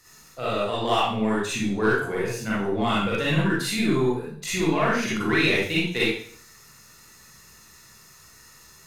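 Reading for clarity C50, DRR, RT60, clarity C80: -2.0 dB, -8.0 dB, 0.55 s, 4.0 dB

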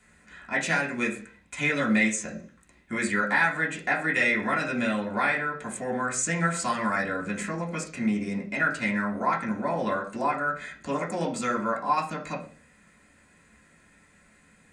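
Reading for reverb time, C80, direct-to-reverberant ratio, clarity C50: 0.40 s, 15.5 dB, -3.5 dB, 11.0 dB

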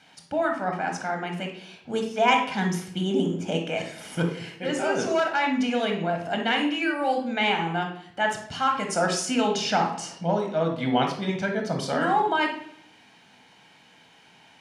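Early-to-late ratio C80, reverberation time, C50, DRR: 10.5 dB, 0.65 s, 5.5 dB, 2.5 dB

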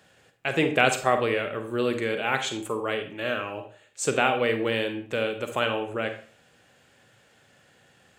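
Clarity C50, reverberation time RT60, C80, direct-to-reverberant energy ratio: 9.0 dB, 0.45 s, 13.0 dB, 7.0 dB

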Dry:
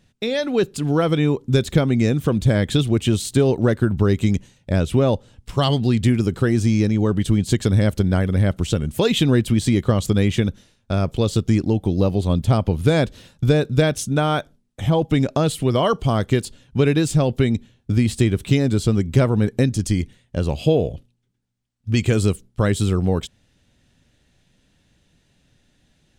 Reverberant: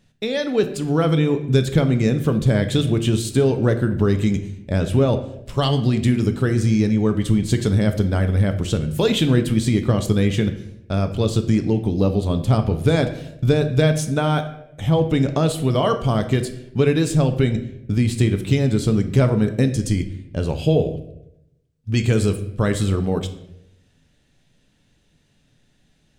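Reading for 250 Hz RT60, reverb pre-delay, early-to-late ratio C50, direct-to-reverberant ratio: 0.90 s, 5 ms, 11.0 dB, 7.0 dB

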